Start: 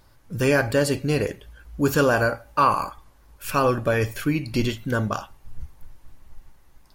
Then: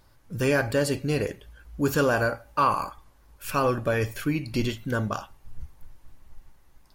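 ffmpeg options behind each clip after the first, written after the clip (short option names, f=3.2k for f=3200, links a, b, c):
-af "acontrast=25,volume=-8dB"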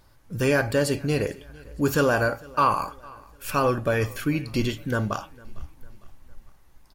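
-af "aecho=1:1:454|908|1362:0.0631|0.029|0.0134,volume=1.5dB"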